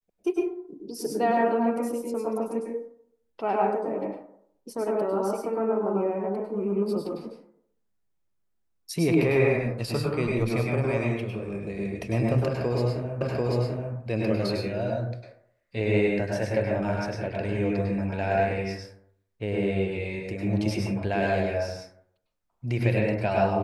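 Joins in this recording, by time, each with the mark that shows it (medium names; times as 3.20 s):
13.21 s: repeat of the last 0.74 s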